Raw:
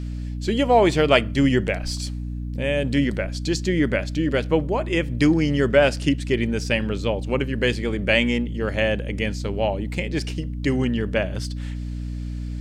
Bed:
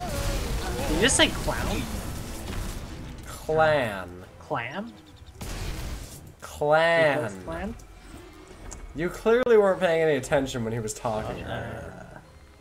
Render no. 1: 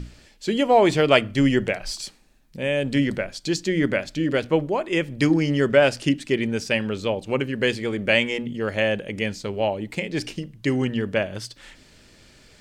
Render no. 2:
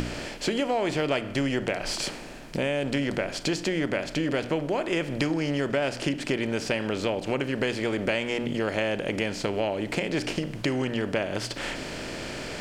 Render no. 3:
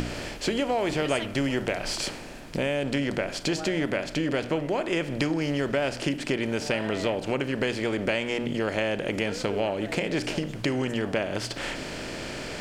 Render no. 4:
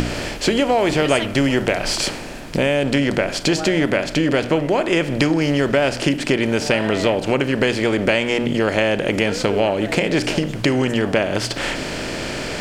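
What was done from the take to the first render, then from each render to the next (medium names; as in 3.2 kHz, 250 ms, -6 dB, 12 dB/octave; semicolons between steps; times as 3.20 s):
hum notches 60/120/180/240/300 Hz
spectral levelling over time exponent 0.6; compression 4:1, threshold -25 dBFS, peak gain reduction 14 dB
add bed -18 dB
trim +9 dB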